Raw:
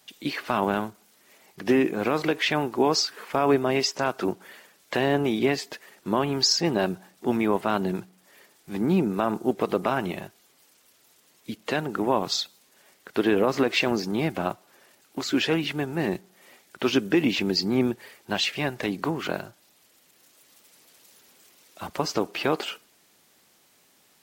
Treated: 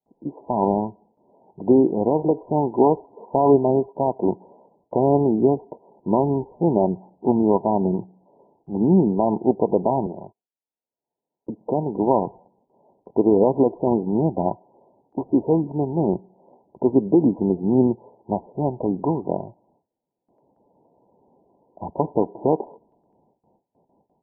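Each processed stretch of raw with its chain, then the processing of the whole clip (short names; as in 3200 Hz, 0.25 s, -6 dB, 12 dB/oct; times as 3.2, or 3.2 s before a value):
10.06–11.61 gate -52 dBFS, range -30 dB + low shelf 260 Hz -7.5 dB + three-band squash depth 100%
whole clip: Chebyshev low-pass 990 Hz, order 10; gate with hold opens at -60 dBFS; AGC gain up to 6.5 dB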